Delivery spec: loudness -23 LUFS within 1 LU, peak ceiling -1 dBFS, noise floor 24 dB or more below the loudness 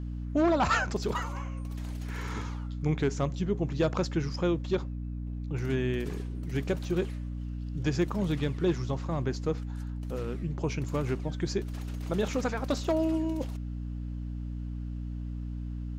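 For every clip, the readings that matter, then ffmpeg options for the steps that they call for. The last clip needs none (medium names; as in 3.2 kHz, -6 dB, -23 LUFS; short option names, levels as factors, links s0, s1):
hum 60 Hz; highest harmonic 300 Hz; hum level -33 dBFS; loudness -32.0 LUFS; peak level -16.0 dBFS; loudness target -23.0 LUFS
-> -af "bandreject=f=60:t=h:w=6,bandreject=f=120:t=h:w=6,bandreject=f=180:t=h:w=6,bandreject=f=240:t=h:w=6,bandreject=f=300:t=h:w=6"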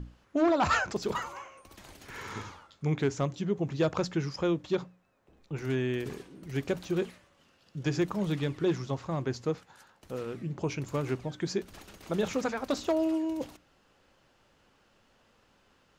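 hum not found; loudness -32.0 LUFS; peak level -16.0 dBFS; loudness target -23.0 LUFS
-> -af "volume=2.82"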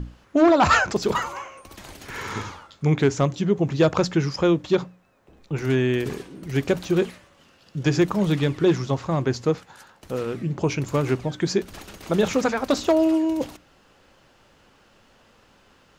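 loudness -23.0 LUFS; peak level -7.0 dBFS; noise floor -58 dBFS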